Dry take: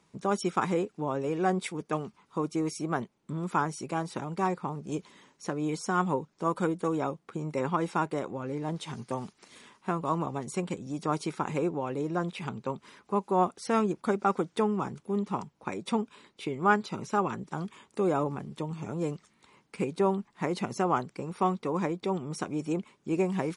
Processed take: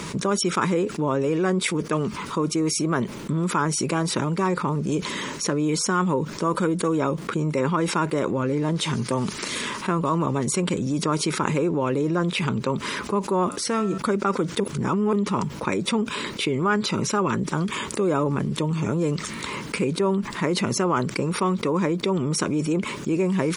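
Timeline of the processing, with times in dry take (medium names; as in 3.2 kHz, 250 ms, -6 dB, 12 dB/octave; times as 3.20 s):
13.49–13.98 s: feedback comb 95 Hz, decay 0.67 s
14.60–15.13 s: reverse
whole clip: peaking EQ 760 Hz -12.5 dB 0.27 oct; level flattener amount 70%; trim +1.5 dB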